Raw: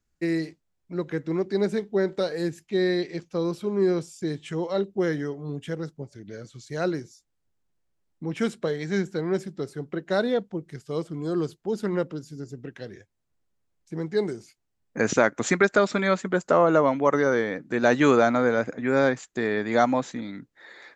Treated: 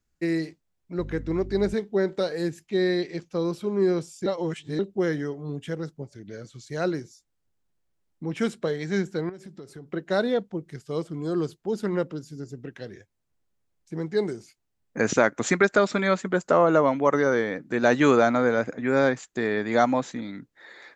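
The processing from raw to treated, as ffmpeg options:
-filter_complex "[0:a]asettb=1/sr,asplit=3[a][b][c];[a]atrim=end=0.994[d];[b]atrim=start=0.99:end=1.74,asetpts=PTS-STARTPTS,afade=t=in:d=0.004:c=qsin,afade=t=out:st=0.746:d=0.004:c=qsin,aeval=exprs='val(0)+0.0158*(sin(2*PI*50*n/s)+sin(2*PI*2*50*n/s)/2+sin(2*PI*3*50*n/s)/3+sin(2*PI*4*50*n/s)/4+sin(2*PI*5*50*n/s)/5)':c=same[e];[c]atrim=start=1.736[f];[d][e]acrossfade=d=0.004:c1=hsin:c2=qsin[g];[g][f]acrossfade=d=0.004:c1=qsin:c2=hsin,asettb=1/sr,asplit=3[h][i][j];[h]atrim=end=9.294[k];[i]atrim=start=9.29:end=9.93,asetpts=PTS-STARTPTS,afade=t=in:d=0.004:c=qsin,afade=t=out:st=0.636:d=0.004:c=qsin,acompressor=threshold=-37dB:ratio=12:attack=3.2:release=140:knee=1:detection=peak[l];[j]atrim=start=9.926[m];[k][l]acrossfade=d=0.004:c1=hsin:c2=qsin[n];[n][m]acrossfade=d=0.004:c1=qsin:c2=hsin,asplit=3[o][p][q];[o]atrim=end=4.262[r];[p]atrim=start=4.258:end=4.792,asetpts=PTS-STARTPTS,areverse[s];[q]atrim=start=4.788[t];[r][s]acrossfade=d=0.004:c1=hsin:c2=hsin[u];[u][t]acrossfade=d=0.004:c1=hsin:c2=hsin"

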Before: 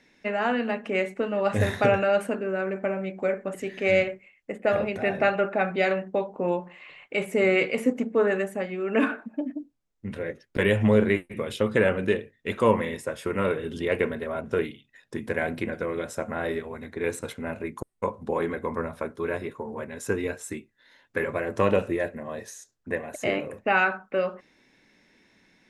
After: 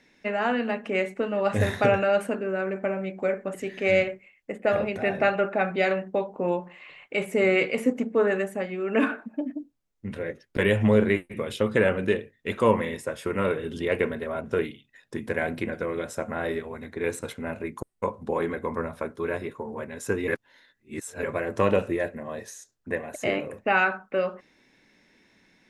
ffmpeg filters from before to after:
-filter_complex "[0:a]asplit=3[a][b][c];[a]atrim=end=20.282[d];[b]atrim=start=20.278:end=21.232,asetpts=PTS-STARTPTS,areverse[e];[c]atrim=start=21.228[f];[d][e]acrossfade=d=0.004:c1=hsin:c2=hsin[g];[g][f]acrossfade=d=0.004:c1=hsin:c2=hsin"

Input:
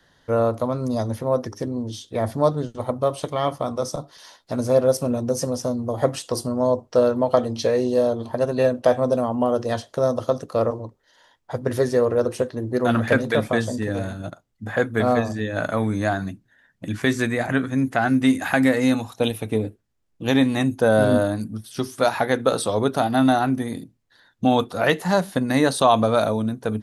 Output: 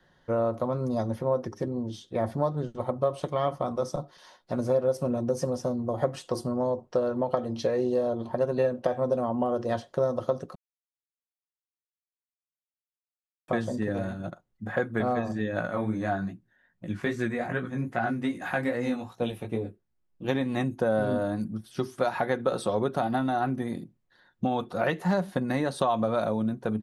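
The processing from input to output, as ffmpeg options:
-filter_complex "[0:a]asplit=3[a][b][c];[a]afade=t=out:st=15.61:d=0.02[d];[b]flanger=delay=16.5:depth=4.5:speed=2.5,afade=t=in:st=15.61:d=0.02,afade=t=out:st=20.28:d=0.02[e];[c]afade=t=in:st=20.28:d=0.02[f];[d][e][f]amix=inputs=3:normalize=0,asplit=3[g][h][i];[g]atrim=end=10.55,asetpts=PTS-STARTPTS,afade=t=out:st=10.546:d=0.004:c=hsin[j];[h]atrim=start=10.55:end=13.48,asetpts=PTS-STARTPTS,volume=0[k];[i]atrim=start=13.48,asetpts=PTS-STARTPTS,afade=t=in:d=0.004:c=hsin[l];[j][k][l]concat=n=3:v=0:a=1,highshelf=f=3.4k:g=-11.5,acompressor=threshold=-19dB:ratio=6,aecho=1:1:5.5:0.36,volume=-3dB"

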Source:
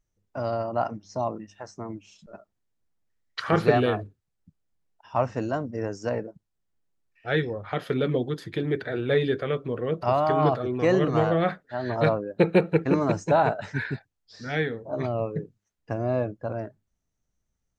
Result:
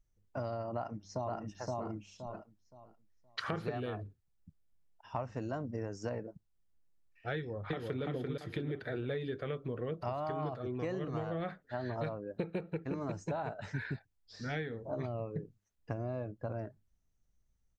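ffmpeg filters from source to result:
-filter_complex "[0:a]asplit=2[a][b];[b]afade=t=in:st=0.74:d=0.01,afade=t=out:st=1.37:d=0.01,aecho=0:1:520|1040|1560|2080:0.841395|0.210349|0.0525872|0.0131468[c];[a][c]amix=inputs=2:normalize=0,asplit=2[d][e];[e]afade=t=in:st=7.36:d=0.01,afade=t=out:st=8.03:d=0.01,aecho=0:1:340|680|1020|1360:0.841395|0.252419|0.0757256|0.0227177[f];[d][f]amix=inputs=2:normalize=0,lowshelf=f=94:g=10,acompressor=threshold=-29dB:ratio=10,volume=-4.5dB"

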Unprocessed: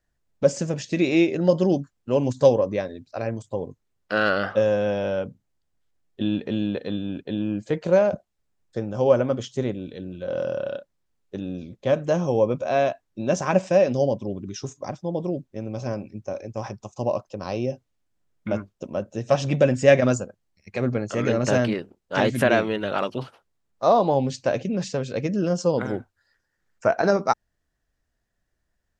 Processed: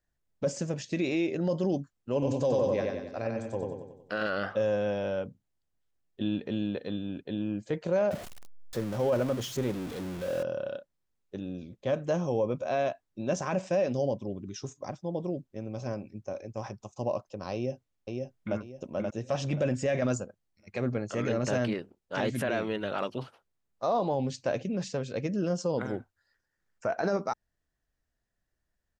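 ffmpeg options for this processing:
-filter_complex "[0:a]asettb=1/sr,asplit=3[a][b][c];[a]atrim=end=2.134[d];[b]atrim=start=2.13:end=4.27,asetpts=PTS-STARTPTS,afade=t=in:d=0.004:c=qsin,afade=t=out:st=2.136:d=0.004:c=qsin,aecho=1:1:93|186|279|372|465|558|651:0.708|0.361|0.184|0.0939|0.0479|0.0244|0.0125,atrim=end_sample=94374[e];[c]atrim=start=4.266[f];[d][e]acrossfade=d=0.004:c1=hsin:c2=qsin[g];[g][f]acrossfade=d=0.004:c1=qsin:c2=hsin,asettb=1/sr,asplit=3[h][i][j];[h]atrim=end=8.114[k];[i]atrim=start=8.11:end=10.43,asetpts=PTS-STARTPTS,afade=t=in:d=0.004:c=qsin,afade=t=out:st=2.316:d=0.004:c=qsin,aeval=exprs='val(0)+0.5*0.0316*sgn(val(0))':c=same[l];[j]atrim=start=10.426[m];[k][l]acrossfade=d=0.004:c1=hsin:c2=qsin[n];[n][m]acrossfade=d=0.004:c1=qsin:c2=hsin,asplit=2[o][p];[p]afade=t=in:st=17.54:d=0.01,afade=t=out:st=18.57:d=0.01,aecho=0:1:530|1060|1590|2120:0.707946|0.212384|0.0637151|0.0191145[q];[o][q]amix=inputs=2:normalize=0,alimiter=limit=-13dB:level=0:latency=1:release=13,volume=-6dB"

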